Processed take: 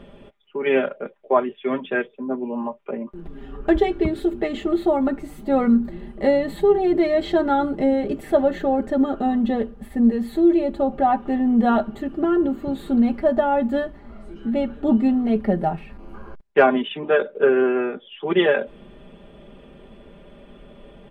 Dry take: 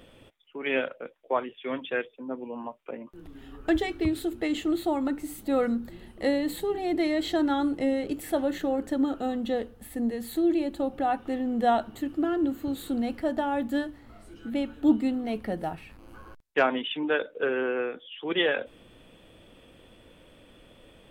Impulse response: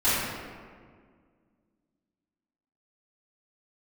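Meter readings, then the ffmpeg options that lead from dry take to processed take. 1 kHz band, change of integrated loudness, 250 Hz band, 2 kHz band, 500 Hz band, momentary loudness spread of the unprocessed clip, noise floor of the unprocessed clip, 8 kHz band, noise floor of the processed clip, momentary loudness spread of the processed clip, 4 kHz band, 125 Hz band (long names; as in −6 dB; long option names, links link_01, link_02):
+7.0 dB, +7.5 dB, +7.0 dB, +4.0 dB, +9.0 dB, 12 LU, −56 dBFS, can't be measured, −48 dBFS, 11 LU, 0.0 dB, +9.5 dB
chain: -af "lowpass=frequency=1000:poles=1,aecho=1:1:5:0.79,volume=8.5dB"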